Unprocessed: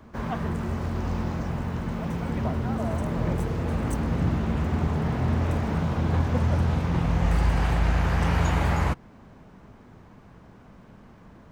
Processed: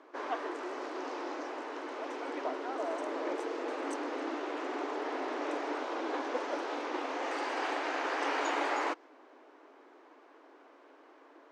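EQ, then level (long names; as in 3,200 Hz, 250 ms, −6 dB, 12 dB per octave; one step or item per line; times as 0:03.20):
dynamic equaliser 5,800 Hz, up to +4 dB, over −55 dBFS, Q 1.1
linear-phase brick-wall high-pass 270 Hz
high-frequency loss of the air 85 metres
−2.0 dB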